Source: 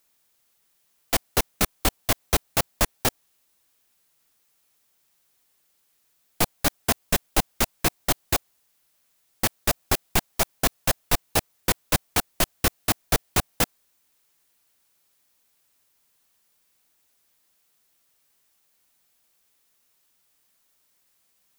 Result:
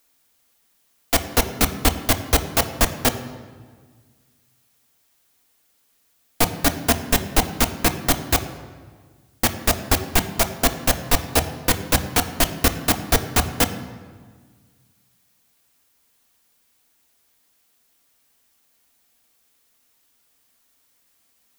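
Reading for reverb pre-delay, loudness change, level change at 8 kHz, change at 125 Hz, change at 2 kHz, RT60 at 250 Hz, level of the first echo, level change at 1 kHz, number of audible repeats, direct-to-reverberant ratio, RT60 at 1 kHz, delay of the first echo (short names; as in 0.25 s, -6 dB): 3 ms, +4.0 dB, +3.5 dB, +5.5 dB, +4.5 dB, 2.0 s, none, +4.5 dB, none, 6.5 dB, 1.5 s, none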